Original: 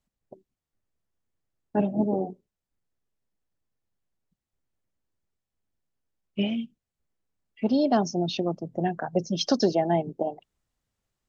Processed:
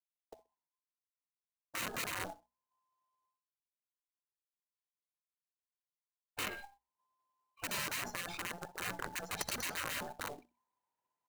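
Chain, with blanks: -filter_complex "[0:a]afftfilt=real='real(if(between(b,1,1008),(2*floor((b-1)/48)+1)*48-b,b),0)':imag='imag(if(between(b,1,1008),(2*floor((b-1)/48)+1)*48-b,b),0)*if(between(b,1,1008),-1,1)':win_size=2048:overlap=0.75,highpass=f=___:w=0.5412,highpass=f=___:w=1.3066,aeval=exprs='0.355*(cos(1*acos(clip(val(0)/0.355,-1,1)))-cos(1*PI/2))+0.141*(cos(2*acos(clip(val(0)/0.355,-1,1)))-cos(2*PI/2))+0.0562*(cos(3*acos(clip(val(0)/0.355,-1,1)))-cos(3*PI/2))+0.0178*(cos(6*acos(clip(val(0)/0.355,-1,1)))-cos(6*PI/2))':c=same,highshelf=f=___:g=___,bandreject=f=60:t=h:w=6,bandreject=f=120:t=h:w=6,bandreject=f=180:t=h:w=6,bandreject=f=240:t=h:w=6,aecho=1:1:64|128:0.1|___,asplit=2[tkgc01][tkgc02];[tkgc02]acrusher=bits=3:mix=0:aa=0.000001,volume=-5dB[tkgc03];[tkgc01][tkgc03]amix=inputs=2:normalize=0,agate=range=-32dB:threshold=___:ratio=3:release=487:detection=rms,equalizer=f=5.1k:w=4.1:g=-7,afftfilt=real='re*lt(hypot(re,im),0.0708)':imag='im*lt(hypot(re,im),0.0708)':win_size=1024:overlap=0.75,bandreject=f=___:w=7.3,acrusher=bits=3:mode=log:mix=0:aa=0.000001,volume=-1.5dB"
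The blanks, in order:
70, 70, 3.3k, -8, 0.026, -55dB, 3.4k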